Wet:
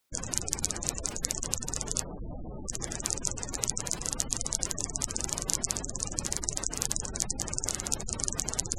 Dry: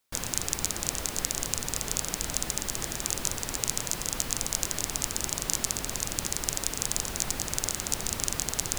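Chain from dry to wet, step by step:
0:02.04–0:02.66: low-pass filter 1,100 Hz 12 dB per octave
gate on every frequency bin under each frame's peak −15 dB strong

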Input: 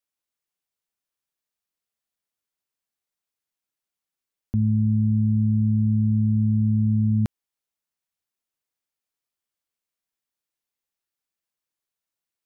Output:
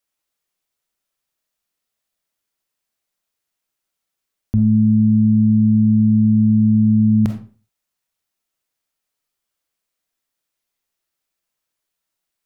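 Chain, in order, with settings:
convolution reverb RT60 0.40 s, pre-delay 5 ms, DRR 4 dB
level +6.5 dB

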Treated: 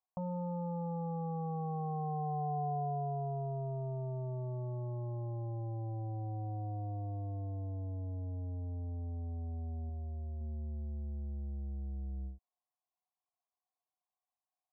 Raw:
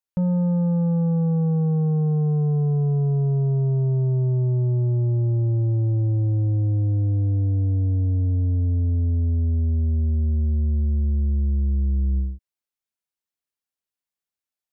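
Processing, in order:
0:09.89–0:10.41: parametric band 220 Hz −5.5 dB
brickwall limiter −22.5 dBFS, peak gain reduction 4.5 dB
formant resonators in series a
level +13 dB

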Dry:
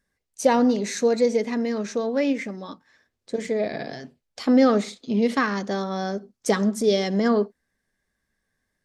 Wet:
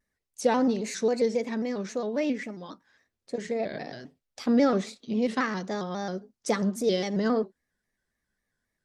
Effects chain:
pitch modulation by a square or saw wave square 3.7 Hz, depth 100 cents
level −5 dB

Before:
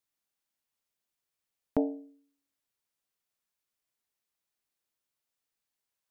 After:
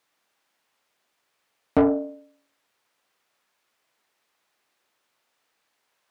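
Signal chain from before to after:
hum removal 85.86 Hz, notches 18
mid-hump overdrive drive 25 dB, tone 1,400 Hz, clips at −13.5 dBFS
level +5 dB

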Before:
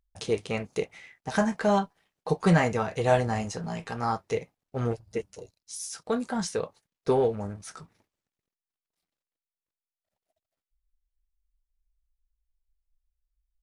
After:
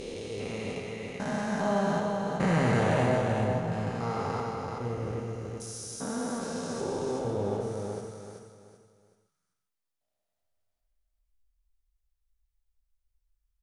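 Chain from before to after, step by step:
spectrum averaged block by block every 400 ms
0:03.06–0:03.72: low-pass filter 1,000 Hz 6 dB per octave
repeating echo 381 ms, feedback 33%, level −4 dB
reverb whose tail is shaped and stops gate 180 ms flat, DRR 2.5 dB

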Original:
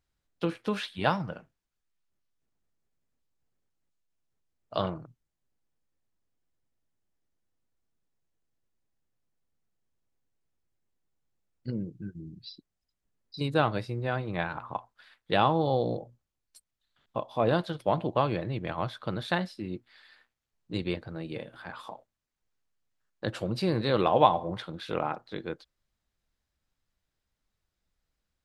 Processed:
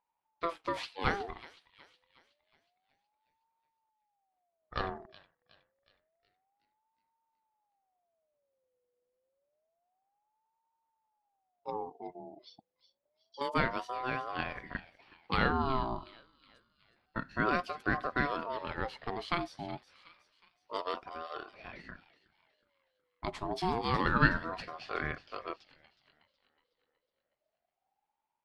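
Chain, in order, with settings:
low-pass that shuts in the quiet parts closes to 2,300 Hz, open at −26.5 dBFS
delay with a high-pass on its return 368 ms, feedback 46%, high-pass 1,700 Hz, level −13 dB
ring modulator whose carrier an LFO sweeps 700 Hz, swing 30%, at 0.28 Hz
level −2 dB

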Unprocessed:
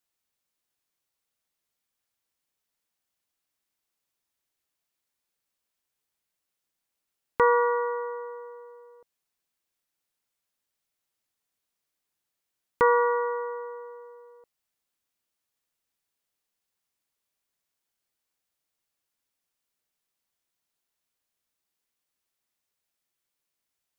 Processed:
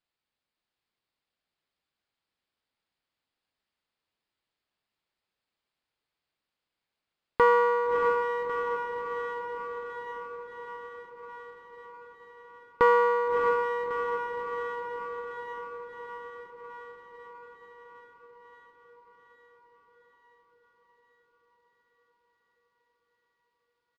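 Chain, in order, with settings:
feedback delay with all-pass diffusion 632 ms, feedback 70%, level −4.5 dB
downsampling to 11,025 Hz
windowed peak hold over 3 samples

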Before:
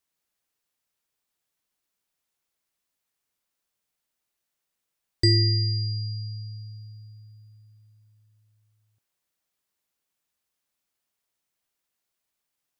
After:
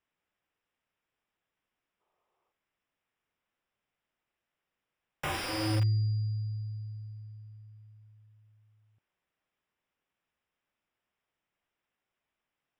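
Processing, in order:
wrap-around overflow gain 21.5 dB
Savitzky-Golay smoothing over 25 samples
gain on a spectral selection 0:02.00–0:02.51, 330–1,300 Hz +11 dB
level +2.5 dB

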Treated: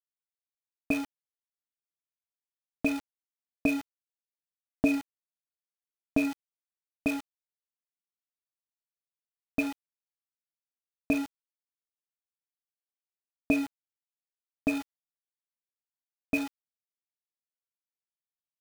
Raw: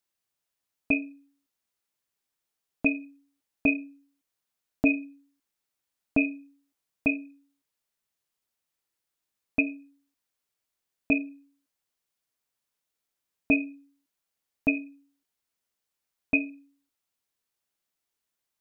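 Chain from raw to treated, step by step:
low-pass filter 2,100 Hz 24 dB per octave
hum removal 137.3 Hz, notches 13
centre clipping without the shift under −33.5 dBFS

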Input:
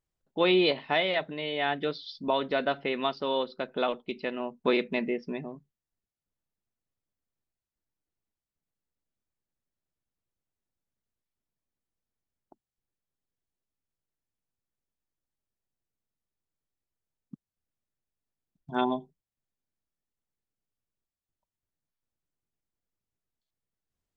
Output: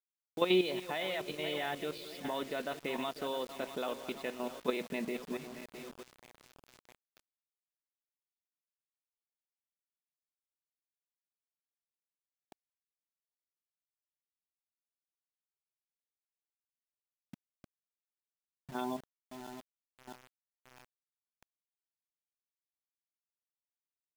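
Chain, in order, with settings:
feedback delay that plays each chunk backwards 330 ms, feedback 67%, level −12 dB
output level in coarse steps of 11 dB
bit reduction 8 bits
level −3 dB

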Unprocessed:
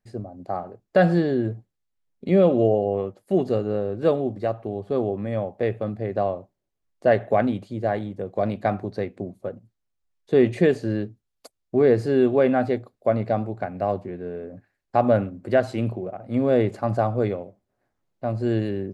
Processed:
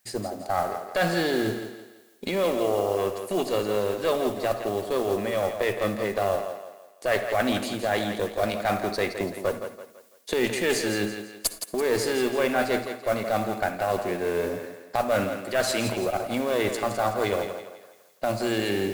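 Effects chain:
camcorder AGC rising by 9.9 dB per second
spectral tilt +4.5 dB per octave
reversed playback
downward compressor 5 to 1, threshold −31 dBFS, peak gain reduction 14.5 dB
reversed playback
noise that follows the level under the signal 21 dB
harmonic generator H 2 −15 dB, 6 −28 dB, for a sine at −18 dBFS
feedback echo with a high-pass in the loop 167 ms, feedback 41%, high-pass 200 Hz, level −8 dB
convolution reverb, pre-delay 48 ms, DRR 12.5 dB
level +8.5 dB

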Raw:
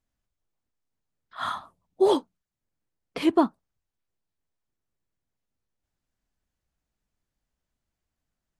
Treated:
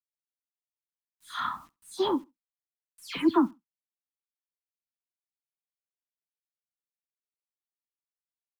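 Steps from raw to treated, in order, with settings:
every frequency bin delayed by itself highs early, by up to 187 ms
bit-depth reduction 10 bits, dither none
flat-topped bell 560 Hz −12.5 dB 1.1 octaves
repeating echo 68 ms, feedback 17%, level −24 dB

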